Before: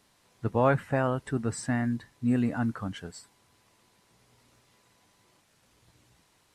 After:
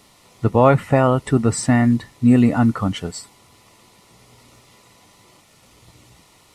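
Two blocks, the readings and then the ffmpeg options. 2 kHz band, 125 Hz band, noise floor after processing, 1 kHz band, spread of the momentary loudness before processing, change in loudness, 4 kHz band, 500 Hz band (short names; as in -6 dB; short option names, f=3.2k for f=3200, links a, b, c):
+7.5 dB, +12.0 dB, -53 dBFS, +11.0 dB, 12 LU, +12.0 dB, +13.0 dB, +11.0 dB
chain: -filter_complex "[0:a]asplit=2[a][b];[b]alimiter=limit=-19dB:level=0:latency=1:release=253,volume=2dB[c];[a][c]amix=inputs=2:normalize=0,asuperstop=centerf=1600:order=4:qfactor=5.6,volume=6.5dB"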